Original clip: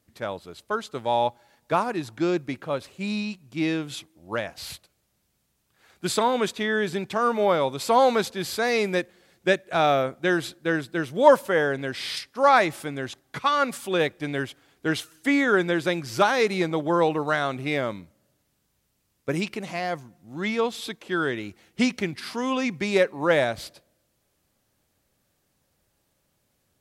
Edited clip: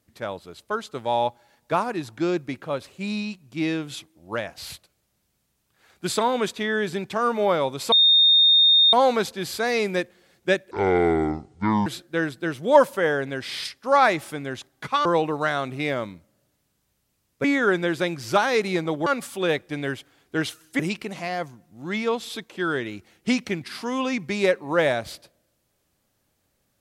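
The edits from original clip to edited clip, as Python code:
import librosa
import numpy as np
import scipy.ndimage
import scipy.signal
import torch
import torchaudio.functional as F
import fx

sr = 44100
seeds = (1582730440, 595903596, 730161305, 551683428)

y = fx.edit(x, sr, fx.insert_tone(at_s=7.92, length_s=1.01, hz=3670.0, db=-12.5),
    fx.speed_span(start_s=9.7, length_s=0.68, speed=0.59),
    fx.swap(start_s=13.57, length_s=1.73, other_s=16.92, other_length_s=2.39), tone=tone)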